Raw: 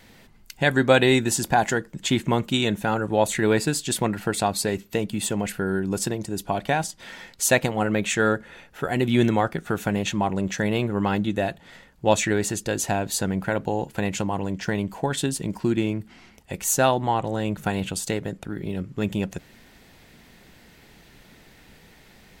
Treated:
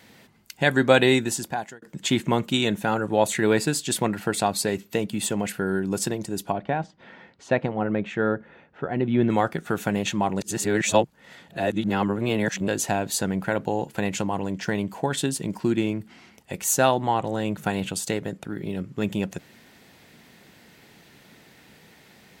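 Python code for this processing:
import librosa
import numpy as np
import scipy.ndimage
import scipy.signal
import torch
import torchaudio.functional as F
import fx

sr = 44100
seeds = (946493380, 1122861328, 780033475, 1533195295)

y = fx.spacing_loss(x, sr, db_at_10k=38, at=(6.52, 9.3))
y = fx.edit(y, sr, fx.fade_out_span(start_s=1.08, length_s=0.74),
    fx.reverse_span(start_s=10.4, length_s=2.28), tone=tone)
y = scipy.signal.sosfilt(scipy.signal.butter(2, 110.0, 'highpass', fs=sr, output='sos'), y)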